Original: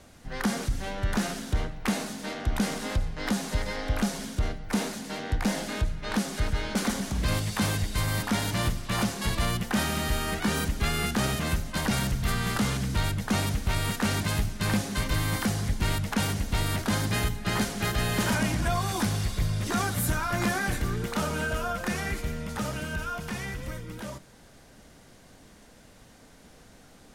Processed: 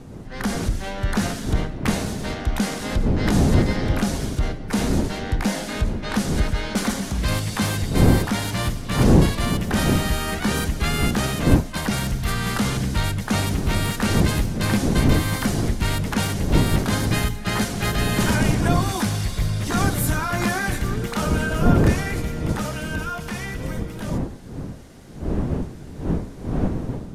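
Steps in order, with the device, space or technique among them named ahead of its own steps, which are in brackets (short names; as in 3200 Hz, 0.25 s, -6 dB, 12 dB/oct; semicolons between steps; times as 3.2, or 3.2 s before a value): smartphone video outdoors (wind noise 230 Hz -28 dBFS; AGC gain up to 4.5 dB; AAC 96 kbps 32000 Hz)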